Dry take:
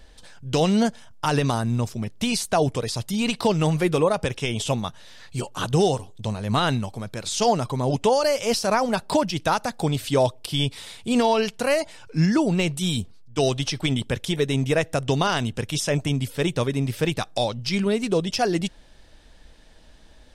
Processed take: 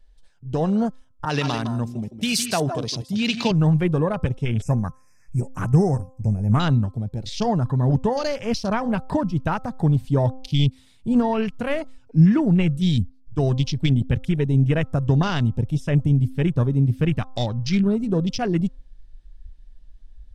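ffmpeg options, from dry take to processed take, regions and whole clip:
ffmpeg -i in.wav -filter_complex "[0:a]asettb=1/sr,asplit=3[link_01][link_02][link_03];[link_01]atrim=end=1.254[link_04];[link_02]atrim=start=1.25:end=3.51,asetpts=PTS-STARTPTS,afade=type=in:duration=0.004:curve=qsin,afade=type=out:start_time=2.256:duration=0.004:curve=qsin,highpass=170,aecho=1:1:160|163:0.316|0.299,atrim=end_sample=99666,adynamicequalizer=threshold=0.0158:dfrequency=1600:dqfactor=0.7:tfrequency=1600:tqfactor=0.7:attack=5:release=100:ratio=0.375:range=3:mode=boostabove:tftype=highshelf[link_05];[link_03]atrim=start=3.506[link_06];[link_04][link_05]acrossfade=duration=0.004:curve1=hsin:curve2=qsin[link_07];[link_07][link_06]acrossfade=duration=0.004:curve1=qsin:curve2=hsin,asettb=1/sr,asplit=3[link_08][link_09][link_10];[link_08]atrim=end=4.624[link_11];[link_09]atrim=start=4.62:end=6.6,asetpts=PTS-STARTPTS,afade=type=in:duration=0.004:curve=qsin,afade=type=out:start_time=1.976:duration=0.004:curve=qsin,asuperstop=centerf=3600:order=20:qfactor=1.5,highshelf=frequency=4200:gain=10.5[link_12];[link_10]atrim=start=6.596[link_13];[link_11][link_12]acrossfade=duration=0.004:curve1=hsin:curve2=qsin[link_14];[link_14][link_13]acrossfade=duration=0.004:curve1=qsin:curve2=hsin,afwtdn=0.0282,asubboost=boost=3.5:cutoff=240,bandreject=frequency=260.6:width_type=h:width=4,bandreject=frequency=521.2:width_type=h:width=4,bandreject=frequency=781.8:width_type=h:width=4,bandreject=frequency=1042.4:width_type=h:width=4,bandreject=frequency=1303:width_type=h:width=4,volume=-2dB" out.wav

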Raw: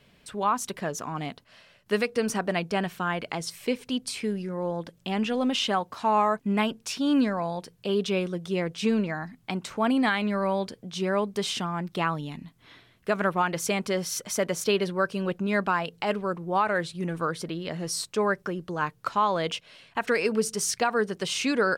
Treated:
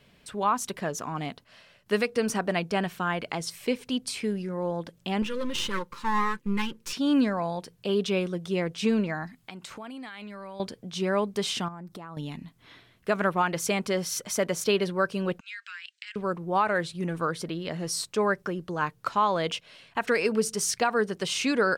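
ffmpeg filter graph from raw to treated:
ffmpeg -i in.wav -filter_complex "[0:a]asettb=1/sr,asplit=3[link_01][link_02][link_03];[link_01]atrim=end=5.224[link_04];[link_02]atrim=start=5.22:end=6.93,asetpts=PTS-STARTPTS,afade=type=in:duration=0.004:curve=qsin,afade=type=out:start_time=1.706:duration=0.004:curve=qsin,aeval=exprs='if(lt(val(0),0),0.251*val(0),val(0))':channel_layout=same,asuperstop=centerf=700:order=8:qfactor=2.2,aecho=1:1:5.8:0.38,atrim=end_sample=75411[link_05];[link_03]atrim=start=6.926[link_06];[link_04][link_05]acrossfade=duration=0.004:curve1=hsin:curve2=qsin[link_07];[link_07][link_06]acrossfade=duration=0.004:curve1=qsin:curve2=hsin,asettb=1/sr,asplit=3[link_08][link_09][link_10];[link_08]atrim=end=9.274[link_11];[link_09]atrim=start=9.27:end=10.6,asetpts=PTS-STARTPTS,afade=type=in:duration=0.004:curve=qsin,afade=type=out:start_time=1.326:duration=0.004:curve=qsin,tiltshelf=frequency=1300:gain=-3.5,acompressor=threshold=-37dB:ratio=10:attack=3.2:release=140:knee=1:detection=peak,bandreject=frequency=5800:width=21[link_12];[link_10]atrim=start=10.596[link_13];[link_11][link_12]acrossfade=duration=0.004:curve1=hsin:curve2=qsin[link_14];[link_14][link_13]acrossfade=duration=0.004:curve1=qsin:curve2=hsin,asettb=1/sr,asplit=3[link_15][link_16][link_17];[link_15]atrim=end=11.684[link_18];[link_16]atrim=start=11.68:end=12.17,asetpts=PTS-STARTPTS,afade=type=in:duration=0.004:curve=qsin,afade=type=out:start_time=0.486:duration=0.004:curve=qsin,equalizer=frequency=2800:width_type=o:width=1.3:gain=-11,acompressor=threshold=-37dB:ratio=16:attack=3.2:release=140:knee=1:detection=peak[link_19];[link_17]atrim=start=12.166[link_20];[link_18][link_19]acrossfade=duration=0.004:curve1=hsin:curve2=qsin[link_21];[link_21][link_20]acrossfade=duration=0.004:curve1=qsin:curve2=hsin,asettb=1/sr,asplit=3[link_22][link_23][link_24];[link_22]atrim=end=15.404[link_25];[link_23]atrim=start=15.4:end=16.16,asetpts=PTS-STARTPTS,afade=type=in:duration=0.004:curve=qsin,afade=type=out:start_time=0.756:duration=0.004:curve=qsin,asuperpass=centerf=3900:order=12:qfactor=0.57,acompressor=threshold=-37dB:ratio=4:attack=3.2:release=140:knee=1:detection=peak[link_26];[link_24]atrim=start=16.156[link_27];[link_25][link_26]acrossfade=duration=0.004:curve1=hsin:curve2=qsin[link_28];[link_28][link_27]acrossfade=duration=0.004:curve1=qsin:curve2=hsin" out.wav

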